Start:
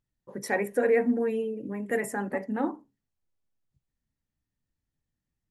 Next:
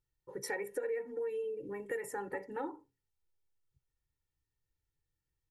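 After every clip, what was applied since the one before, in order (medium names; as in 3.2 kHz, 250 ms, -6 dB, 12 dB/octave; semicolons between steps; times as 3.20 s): band-stop 590 Hz, Q 12; comb 2.2 ms, depth 92%; compression 5:1, threshold -29 dBFS, peak gain reduction 14 dB; trim -6 dB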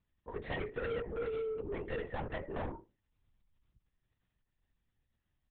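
saturation -39.5 dBFS, distortion -9 dB; LPC vocoder at 8 kHz whisper; trim +5.5 dB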